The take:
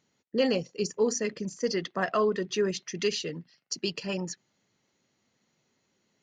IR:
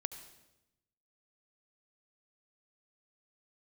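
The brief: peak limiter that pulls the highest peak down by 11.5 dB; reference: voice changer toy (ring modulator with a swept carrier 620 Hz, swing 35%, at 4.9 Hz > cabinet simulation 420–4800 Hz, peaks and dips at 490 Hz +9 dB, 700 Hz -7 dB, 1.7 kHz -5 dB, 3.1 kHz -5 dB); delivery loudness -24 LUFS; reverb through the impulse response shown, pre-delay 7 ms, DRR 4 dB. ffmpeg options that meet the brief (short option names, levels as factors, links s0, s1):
-filter_complex "[0:a]alimiter=level_in=1.19:limit=0.0631:level=0:latency=1,volume=0.841,asplit=2[s0][s1];[1:a]atrim=start_sample=2205,adelay=7[s2];[s1][s2]afir=irnorm=-1:irlink=0,volume=0.708[s3];[s0][s3]amix=inputs=2:normalize=0,aeval=exprs='val(0)*sin(2*PI*620*n/s+620*0.35/4.9*sin(2*PI*4.9*n/s))':c=same,highpass=420,equalizer=f=490:t=q:w=4:g=9,equalizer=f=700:t=q:w=4:g=-7,equalizer=f=1700:t=q:w=4:g=-5,equalizer=f=3100:t=q:w=4:g=-5,lowpass=f=4800:w=0.5412,lowpass=f=4800:w=1.3066,volume=5.62"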